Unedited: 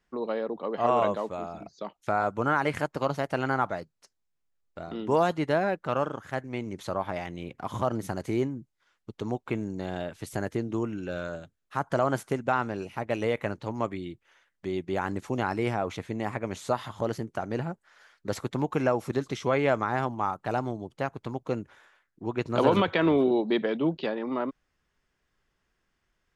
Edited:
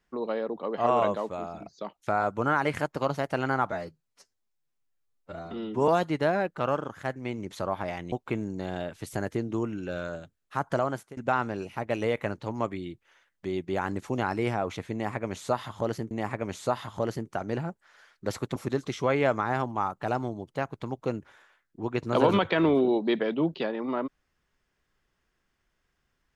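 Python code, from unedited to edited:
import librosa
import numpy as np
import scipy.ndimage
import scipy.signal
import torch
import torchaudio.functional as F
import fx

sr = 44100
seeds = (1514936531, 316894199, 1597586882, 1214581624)

y = fx.edit(x, sr, fx.stretch_span(start_s=3.72, length_s=1.44, factor=1.5),
    fx.cut(start_s=7.4, length_s=1.92),
    fx.fade_out_to(start_s=11.92, length_s=0.45, floor_db=-22.5),
    fx.repeat(start_s=16.13, length_s=1.18, count=2),
    fx.cut(start_s=18.58, length_s=0.41), tone=tone)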